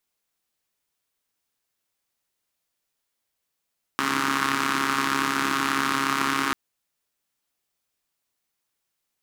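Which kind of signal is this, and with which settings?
four-cylinder engine model, steady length 2.54 s, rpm 4100, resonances 290/1200 Hz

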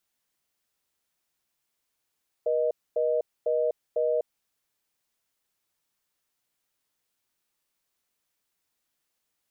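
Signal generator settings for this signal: call progress tone reorder tone, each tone -25 dBFS 1.82 s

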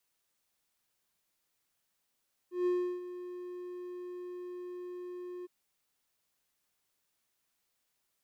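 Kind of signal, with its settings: ADSR triangle 358 Hz, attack 152 ms, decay 341 ms, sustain -14 dB, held 2.94 s, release 21 ms -24 dBFS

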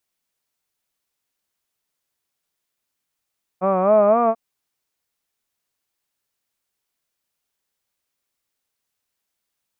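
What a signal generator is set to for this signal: formant-synthesis vowel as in hud, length 0.74 s, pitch 180 Hz, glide +5 st, vibrato 3.9 Hz, vibrato depth 0.95 st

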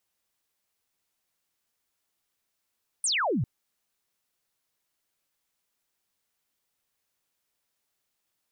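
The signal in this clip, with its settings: laser zap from 9.8 kHz, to 100 Hz, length 0.40 s sine, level -23.5 dB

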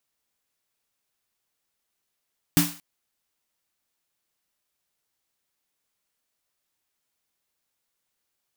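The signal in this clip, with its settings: snare drum length 0.23 s, tones 170 Hz, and 290 Hz, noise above 670 Hz, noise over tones -3 dB, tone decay 0.29 s, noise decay 0.41 s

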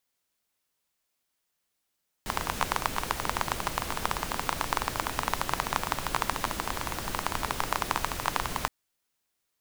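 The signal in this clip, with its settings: rain from filtered ticks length 6.42 s, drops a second 17, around 1 kHz, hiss -2 dB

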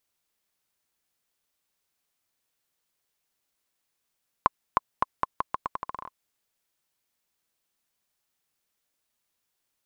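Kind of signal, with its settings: bouncing ball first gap 0.31 s, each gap 0.82, 1.05 kHz, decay 22 ms -5 dBFS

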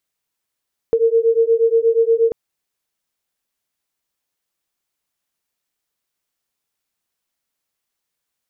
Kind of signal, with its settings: beating tones 453 Hz, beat 8.4 Hz, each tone -15 dBFS 1.39 s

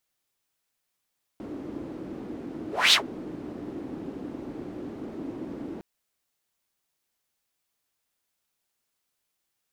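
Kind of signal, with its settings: whoosh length 4.41 s, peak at 1.53 s, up 0.25 s, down 0.11 s, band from 300 Hz, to 3.8 kHz, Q 3.4, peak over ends 20 dB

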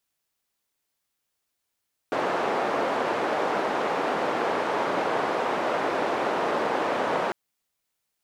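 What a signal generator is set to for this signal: noise band 360–830 Hz, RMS -26 dBFS 5.20 s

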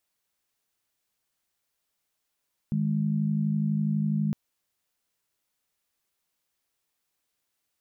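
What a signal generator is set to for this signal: chord D#3/G#3 sine, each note -26 dBFS 1.61 s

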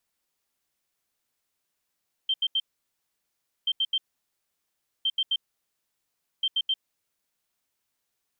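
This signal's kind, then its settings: beep pattern sine 3.14 kHz, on 0.05 s, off 0.08 s, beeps 3, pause 1.07 s, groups 4, -21.5 dBFS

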